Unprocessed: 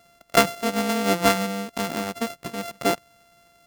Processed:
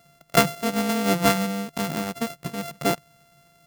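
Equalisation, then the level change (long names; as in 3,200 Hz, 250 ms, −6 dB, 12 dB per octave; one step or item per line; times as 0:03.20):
parametric band 150 Hz +14 dB 0.43 octaves
high-shelf EQ 11,000 Hz +4.5 dB
−1.5 dB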